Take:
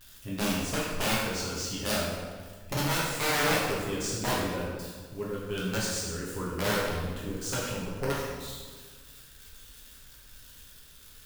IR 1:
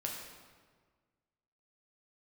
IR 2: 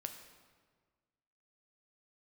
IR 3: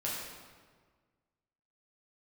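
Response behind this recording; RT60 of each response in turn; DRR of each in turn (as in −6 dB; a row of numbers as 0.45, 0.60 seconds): 3; 1.6, 1.6, 1.6 seconds; −1.5, 5.5, −6.5 decibels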